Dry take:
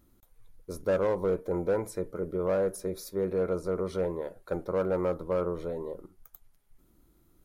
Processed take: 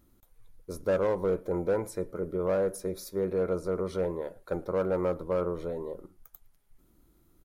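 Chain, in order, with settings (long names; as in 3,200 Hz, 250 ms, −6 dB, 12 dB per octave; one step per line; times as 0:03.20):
slap from a distant wall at 19 metres, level −26 dB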